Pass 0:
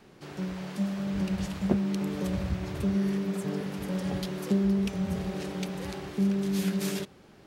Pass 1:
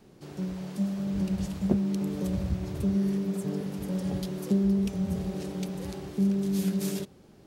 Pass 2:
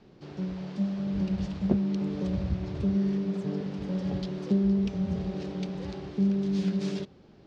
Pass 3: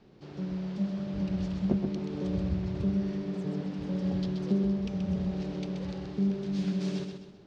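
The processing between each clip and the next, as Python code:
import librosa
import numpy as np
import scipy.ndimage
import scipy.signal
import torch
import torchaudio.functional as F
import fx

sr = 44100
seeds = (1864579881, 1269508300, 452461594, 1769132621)

y1 = fx.peak_eq(x, sr, hz=1800.0, db=-9.0, octaves=2.7)
y1 = y1 * 10.0 ** (1.5 / 20.0)
y2 = scipy.signal.sosfilt(scipy.signal.butter(4, 5100.0, 'lowpass', fs=sr, output='sos'), y1)
y3 = fx.echo_feedback(y2, sr, ms=129, feedback_pct=39, wet_db=-6.0)
y3 = y3 * 10.0 ** (-2.5 / 20.0)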